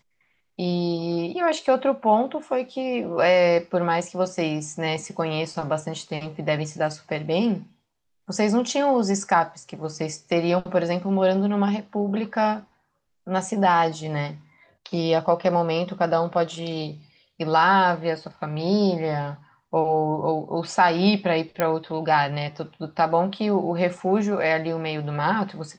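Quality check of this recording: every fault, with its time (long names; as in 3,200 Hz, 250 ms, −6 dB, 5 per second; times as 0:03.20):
0:21.60: click −9 dBFS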